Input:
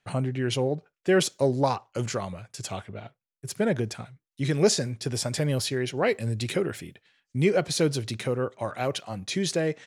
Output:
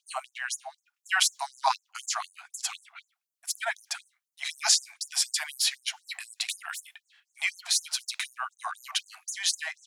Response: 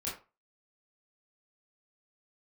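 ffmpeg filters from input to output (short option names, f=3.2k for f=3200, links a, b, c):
-filter_complex "[0:a]acrossover=split=340[a][b];[a]acompressor=threshold=-43dB:ratio=4[c];[c][b]amix=inputs=2:normalize=0,afftfilt=real='re*gte(b*sr/1024,640*pow(6400/640,0.5+0.5*sin(2*PI*4*pts/sr)))':imag='im*gte(b*sr/1024,640*pow(6400/640,0.5+0.5*sin(2*PI*4*pts/sr)))':win_size=1024:overlap=0.75,volume=5.5dB"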